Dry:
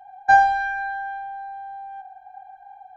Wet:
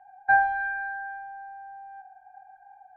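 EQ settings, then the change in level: four-pole ladder low-pass 2.1 kHz, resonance 45%; peaking EQ 130 Hz +2.5 dB; 0.0 dB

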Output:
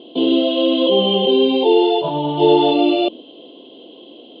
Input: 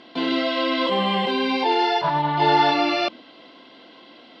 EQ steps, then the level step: FFT filter 100 Hz 0 dB, 240 Hz +6 dB, 420 Hz +15 dB, 920 Hz -3 dB, 1.9 kHz -26 dB, 3.1 kHz +11 dB, 5.6 kHz -22 dB, 8.5 kHz -17 dB; -1.0 dB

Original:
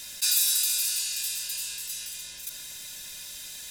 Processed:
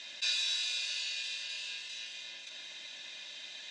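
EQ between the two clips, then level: distance through air 84 m; cabinet simulation 410–5300 Hz, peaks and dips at 450 Hz -8 dB, 960 Hz -5 dB, 1.4 kHz -8 dB, 5.1 kHz -8 dB; +3.5 dB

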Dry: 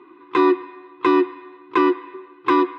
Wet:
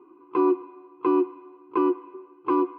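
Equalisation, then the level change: boxcar filter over 24 samples; bass shelf 190 Hz -8.5 dB; -2.0 dB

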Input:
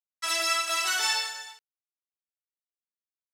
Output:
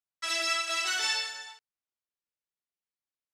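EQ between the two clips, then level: dynamic bell 1 kHz, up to -8 dB, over -47 dBFS, Q 1.7; distance through air 54 m; 0.0 dB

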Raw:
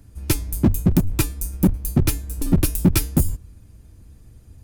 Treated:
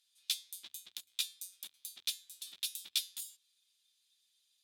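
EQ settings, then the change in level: band-pass filter 3.6 kHz, Q 6.4; differentiator; +9.5 dB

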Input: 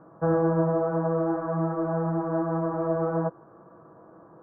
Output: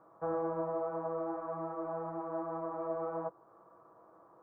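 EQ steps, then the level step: tilt shelf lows -8 dB, about 670 Hz; dynamic bell 1.7 kHz, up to -3 dB, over -44 dBFS, Q 0.72; graphic EQ with 31 bands 160 Hz -7 dB, 250 Hz -5 dB, 1.6 kHz -11 dB; -7.5 dB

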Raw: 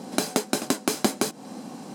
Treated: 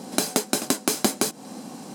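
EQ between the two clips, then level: treble shelf 5.1 kHz +6.5 dB; 0.0 dB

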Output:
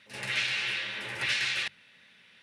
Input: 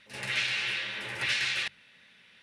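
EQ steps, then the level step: high-pass 69 Hz; 0.0 dB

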